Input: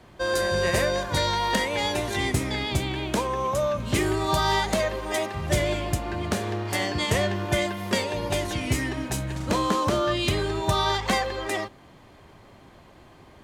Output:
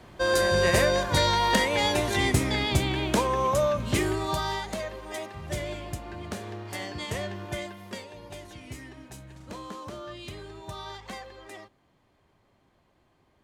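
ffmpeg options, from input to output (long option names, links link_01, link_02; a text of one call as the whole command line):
ffmpeg -i in.wav -af "volume=1.5dB,afade=type=out:start_time=3.52:duration=1.07:silence=0.298538,afade=type=out:start_time=7.45:duration=0.64:silence=0.446684" out.wav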